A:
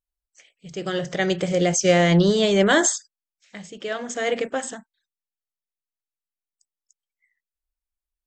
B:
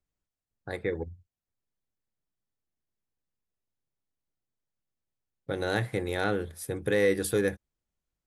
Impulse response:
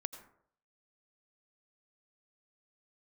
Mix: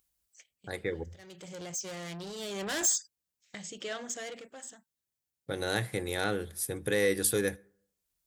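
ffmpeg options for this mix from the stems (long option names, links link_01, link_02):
-filter_complex "[0:a]agate=range=-22dB:threshold=-50dB:ratio=16:detection=peak,acompressor=mode=upward:threshold=-33dB:ratio=2.5,asoftclip=type=tanh:threshold=-22dB,volume=-8dB,afade=type=in:start_time=2.35:duration=0.65:silence=0.334965,afade=type=out:start_time=3.88:duration=0.54:silence=0.251189[link_01];[1:a]volume=-4.5dB,asplit=3[link_02][link_03][link_04];[link_03]volume=-17.5dB[link_05];[link_04]apad=whole_len=364692[link_06];[link_01][link_06]sidechaincompress=threshold=-47dB:ratio=12:attack=5.9:release=452[link_07];[2:a]atrim=start_sample=2205[link_08];[link_05][link_08]afir=irnorm=-1:irlink=0[link_09];[link_07][link_02][link_09]amix=inputs=3:normalize=0,highpass=44,highshelf=frequency=3700:gain=12"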